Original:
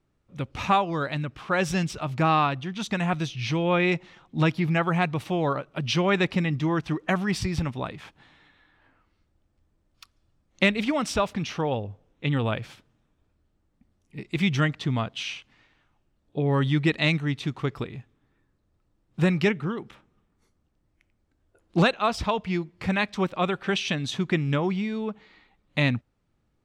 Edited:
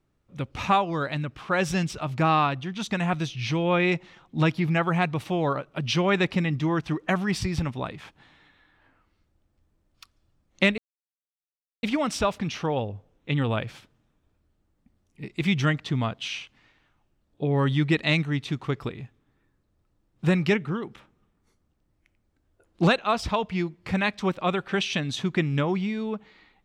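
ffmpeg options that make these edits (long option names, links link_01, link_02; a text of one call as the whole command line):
ffmpeg -i in.wav -filter_complex "[0:a]asplit=2[link_01][link_02];[link_01]atrim=end=10.78,asetpts=PTS-STARTPTS,afade=type=out:start_time=10.776:duration=0.004:curve=hsin,apad=pad_dur=1.05[link_03];[link_02]atrim=start=10.78,asetpts=PTS-STARTPTS,afade=type=in:duration=0.004:curve=hsin[link_04];[link_03][link_04]concat=n=2:v=0:a=1" out.wav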